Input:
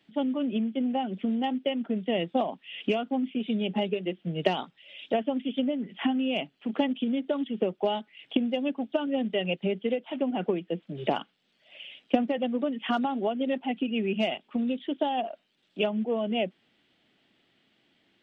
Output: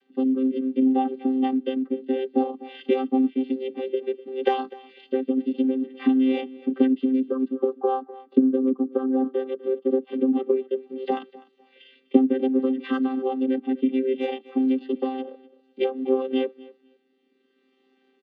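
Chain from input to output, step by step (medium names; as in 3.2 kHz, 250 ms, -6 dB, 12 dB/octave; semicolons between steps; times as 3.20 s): vocoder on a held chord bare fifth, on C4; 7.28–10.02 s: resonant high shelf 1.7 kHz -10.5 dB, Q 3; feedback delay 250 ms, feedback 19%, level -20 dB; rotary cabinet horn 0.6 Hz; trim +7.5 dB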